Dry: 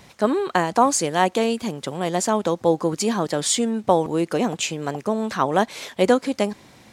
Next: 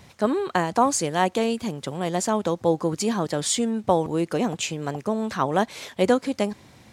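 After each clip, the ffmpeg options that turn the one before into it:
-af "equalizer=f=88:t=o:w=1.5:g=7,volume=-3dB"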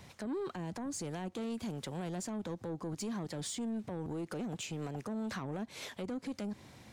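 -filter_complex "[0:a]acrossover=split=360[a][b];[b]acompressor=threshold=-31dB:ratio=6[c];[a][c]amix=inputs=2:normalize=0,alimiter=limit=-23.5dB:level=0:latency=1:release=113,asoftclip=type=tanh:threshold=-28dB,volume=-4.5dB"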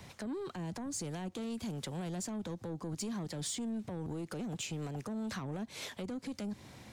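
-filter_complex "[0:a]acrossover=split=190|3000[a][b][c];[b]acompressor=threshold=-51dB:ratio=1.5[d];[a][d][c]amix=inputs=3:normalize=0,volume=2.5dB"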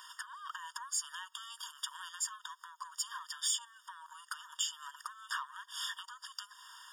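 -af "afftfilt=real='re*eq(mod(floor(b*sr/1024/930),2),1)':imag='im*eq(mod(floor(b*sr/1024/930),2),1)':win_size=1024:overlap=0.75,volume=8.5dB"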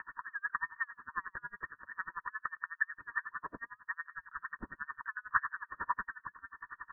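-filter_complex "[0:a]asplit=2[a][b];[b]adelay=110.8,volume=-13dB,highshelf=f=4k:g=-2.49[c];[a][c]amix=inputs=2:normalize=0,lowpass=f=2.4k:t=q:w=0.5098,lowpass=f=2.4k:t=q:w=0.6013,lowpass=f=2.4k:t=q:w=0.9,lowpass=f=2.4k:t=q:w=2.563,afreqshift=-2800,aeval=exprs='val(0)*pow(10,-34*(0.5-0.5*cos(2*PI*11*n/s))/20)':c=same,volume=14dB"

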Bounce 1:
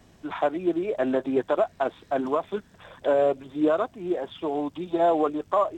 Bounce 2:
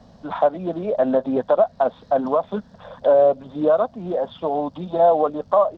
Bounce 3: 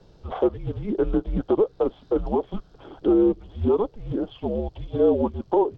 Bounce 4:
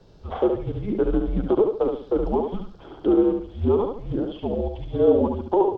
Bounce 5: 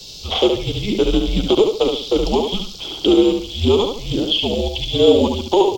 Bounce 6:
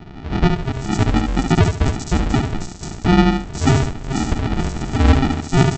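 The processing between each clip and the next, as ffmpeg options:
-filter_complex "[0:a]firequalizer=gain_entry='entry(120,0);entry(220,6);entry(340,-10);entry(520,6);entry(2300,-12);entry(4400,2);entry(8500,-19)':delay=0.05:min_phase=1,asplit=2[a][b];[b]acompressor=threshold=-25dB:ratio=6,volume=-1dB[c];[a][c]amix=inputs=2:normalize=0"
-af "afreqshift=-220,volume=-3.5dB"
-af "aecho=1:1:71|142|213|284:0.562|0.18|0.0576|0.0184"
-af "aexciter=amount=14.7:drive=8:freq=2.6k,volume=5dB"
-filter_complex "[0:a]aresample=16000,acrusher=samples=30:mix=1:aa=0.000001,aresample=44100,acrossover=split=4700[a][b];[b]adelay=490[c];[a][c]amix=inputs=2:normalize=0"

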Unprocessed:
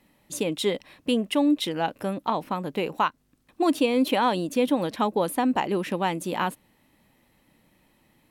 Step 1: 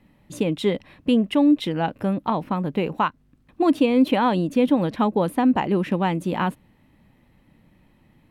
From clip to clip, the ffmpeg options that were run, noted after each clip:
-af "bass=f=250:g=9,treble=f=4k:g=-10,volume=1.5dB"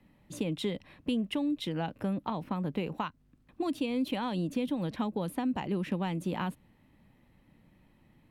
-filter_complex "[0:a]acrossover=split=170|3000[a][b][c];[b]acompressor=threshold=-26dB:ratio=6[d];[a][d][c]amix=inputs=3:normalize=0,volume=-5.5dB"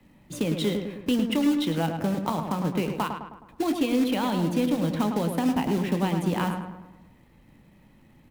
-filter_complex "[0:a]acrossover=split=200[a][b];[b]acrusher=bits=3:mode=log:mix=0:aa=0.000001[c];[a][c]amix=inputs=2:normalize=0,asplit=2[d][e];[e]adelay=24,volume=-13dB[f];[d][f]amix=inputs=2:normalize=0,asplit=2[g][h];[h]adelay=105,lowpass=f=2.2k:p=1,volume=-5.5dB,asplit=2[i][j];[j]adelay=105,lowpass=f=2.2k:p=1,volume=0.53,asplit=2[k][l];[l]adelay=105,lowpass=f=2.2k:p=1,volume=0.53,asplit=2[m][n];[n]adelay=105,lowpass=f=2.2k:p=1,volume=0.53,asplit=2[o][p];[p]adelay=105,lowpass=f=2.2k:p=1,volume=0.53,asplit=2[q][r];[r]adelay=105,lowpass=f=2.2k:p=1,volume=0.53,asplit=2[s][t];[t]adelay=105,lowpass=f=2.2k:p=1,volume=0.53[u];[g][i][k][m][o][q][s][u]amix=inputs=8:normalize=0,volume=5.5dB"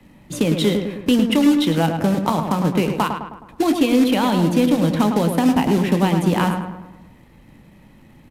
-af "aresample=32000,aresample=44100,volume=8dB"

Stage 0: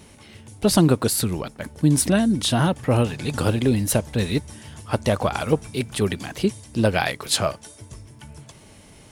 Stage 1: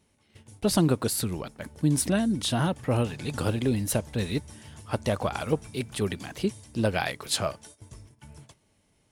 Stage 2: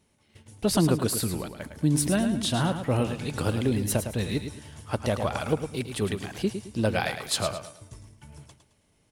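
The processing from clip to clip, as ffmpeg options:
-af "agate=range=-14dB:threshold=-43dB:ratio=16:detection=peak,volume=-6dB"
-af "aecho=1:1:108|216|324|432:0.376|0.124|0.0409|0.0135"

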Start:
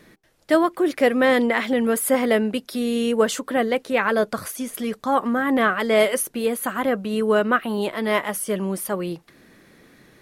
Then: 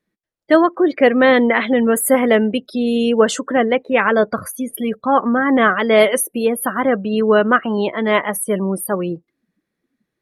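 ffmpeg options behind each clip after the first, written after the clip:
-af "afftdn=nr=32:nf=-34,volume=5.5dB"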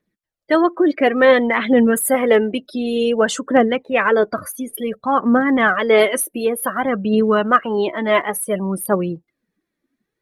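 -af "aphaser=in_gain=1:out_gain=1:delay=3.5:decay=0.46:speed=0.56:type=triangular,volume=-2dB"

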